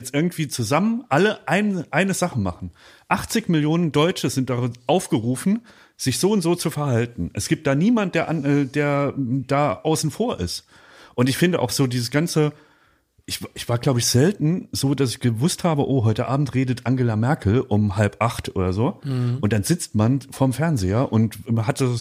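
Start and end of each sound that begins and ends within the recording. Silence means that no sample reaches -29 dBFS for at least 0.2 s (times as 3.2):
3.11–5.58
6–10.58
11.18–12.5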